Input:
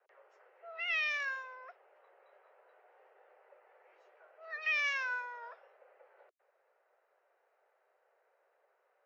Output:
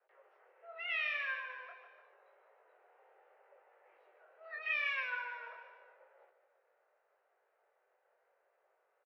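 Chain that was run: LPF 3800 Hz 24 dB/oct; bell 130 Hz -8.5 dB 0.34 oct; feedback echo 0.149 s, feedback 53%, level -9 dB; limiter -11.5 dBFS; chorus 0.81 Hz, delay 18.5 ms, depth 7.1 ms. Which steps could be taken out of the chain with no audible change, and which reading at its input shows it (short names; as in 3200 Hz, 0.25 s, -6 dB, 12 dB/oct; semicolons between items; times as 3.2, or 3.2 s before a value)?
bell 130 Hz: input band starts at 360 Hz; limiter -11.5 dBFS: input peak -22.5 dBFS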